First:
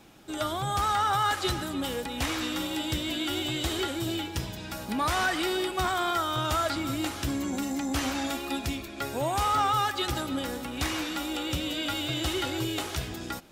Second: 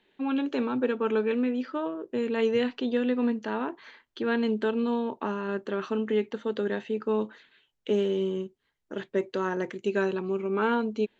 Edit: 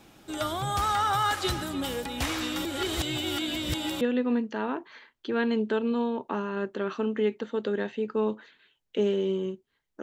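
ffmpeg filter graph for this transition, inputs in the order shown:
ffmpeg -i cue0.wav -i cue1.wav -filter_complex "[0:a]apad=whole_dur=10.02,atrim=end=10.02,asplit=2[link_01][link_02];[link_01]atrim=end=2.652[link_03];[link_02]atrim=start=2.648:end=4.012,asetpts=PTS-STARTPTS,areverse[link_04];[1:a]atrim=start=2.928:end=8.94[link_05];[link_03][link_04]acrossfade=duration=0.004:curve1=hsin:curve2=hsin[link_06];[link_06][link_05]acrossfade=duration=0.004:curve1=hsin:curve2=hsin" out.wav

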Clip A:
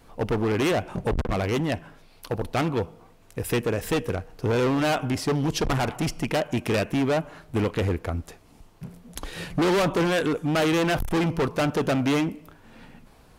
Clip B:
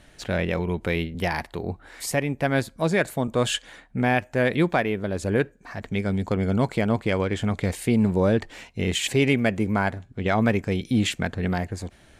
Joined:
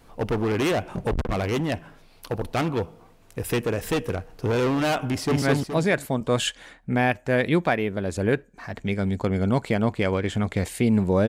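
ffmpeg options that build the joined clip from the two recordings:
ffmpeg -i cue0.wav -i cue1.wav -filter_complex "[0:a]apad=whole_dur=11.28,atrim=end=11.28,atrim=end=5.422[link_01];[1:a]atrim=start=2.488:end=8.35[link_02];[link_01][link_02]acrossfade=duration=0.004:curve1=hsin:curve2=hsin,asplit=2[link_03][link_04];[link_04]afade=type=in:start_time=5.09:duration=0.01,afade=type=out:start_time=5.42:duration=0.01,aecho=0:1:210|420|630|840|1050:0.944061|0.330421|0.115647|0.0404766|0.0141668[link_05];[link_03][link_05]amix=inputs=2:normalize=0" out.wav

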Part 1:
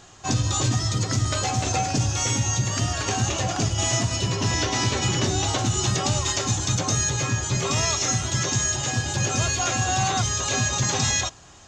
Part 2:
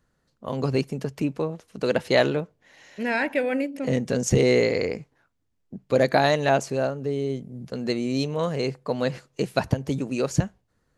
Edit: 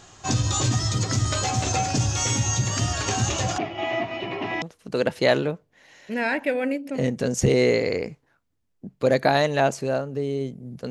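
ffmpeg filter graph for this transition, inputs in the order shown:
ffmpeg -i cue0.wav -i cue1.wav -filter_complex "[0:a]asettb=1/sr,asplit=3[link_01][link_02][link_03];[link_01]atrim=end=3.584[link_04];[link_02]atrim=start=3.58:end=4.62,asetpts=PTS-STARTPTS,afade=type=in:duration=0.004:curve=qsin,afade=type=out:start_time=1.036:duration=0.004:curve=qsin,highpass=320,equalizer=frequency=340:width_type=q:width=4:gain=7,equalizer=frequency=490:width_type=q:width=4:gain=-7,equalizer=frequency=700:width_type=q:width=4:gain=8,equalizer=frequency=1000:width_type=q:width=4:gain=-3,equalizer=frequency=1500:width_type=q:width=4:gain=-8,equalizer=frequency=2200:width_type=q:width=4:gain=7,lowpass=frequency=2600:width=0.5412,lowpass=frequency=2600:width=1.3066[link_05];[link_03]atrim=start=4.616[link_06];[link_04][link_05]acrossfade=duration=0.004:curve1=hsin:curve2=qsin[link_07];[link_07][link_06]acrossfade=duration=0.004:curve1=qsin:curve2=hsin,apad=whole_dur=10.9,atrim=end=10.9,atrim=end=4.622[link_08];[1:a]atrim=start=1.508:end=7.79[link_09];[link_08][link_09]acrossfade=duration=0.004:curve1=hsin:curve2=hsin" out.wav

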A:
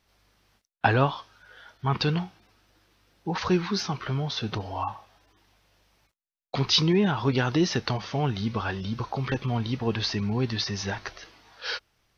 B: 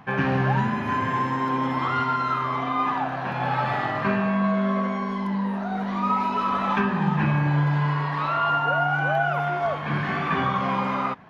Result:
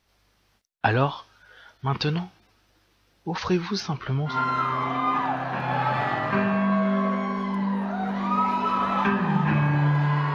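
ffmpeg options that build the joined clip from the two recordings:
ffmpeg -i cue0.wav -i cue1.wav -filter_complex "[0:a]asettb=1/sr,asplit=3[link_01][link_02][link_03];[link_01]atrim=end=3.804[link_04];[link_02]atrim=start=3.8:end=4.39,asetpts=PTS-STARTPTS,afade=type=in:duration=0.004:curve=qsin,afade=type=out:start_time=0.586:duration=0.004:curve=qsin,bass=frequency=250:gain=3,treble=frequency=4000:gain=-5[link_05];[link_03]atrim=start=4.386[link_06];[link_04][link_05]acrossfade=duration=0.004:curve1=hsin:curve2=qsin[link_07];[link_07][link_06]acrossfade=duration=0.004:curve1=qsin:curve2=hsin,apad=whole_dur=10.34,atrim=end=10.34,atrim=end=4.39,asetpts=PTS-STARTPTS[link_08];[1:a]atrim=start=1.97:end=8.06,asetpts=PTS-STARTPTS[link_09];[link_08][link_09]acrossfade=duration=0.14:curve1=tri:curve2=tri" out.wav

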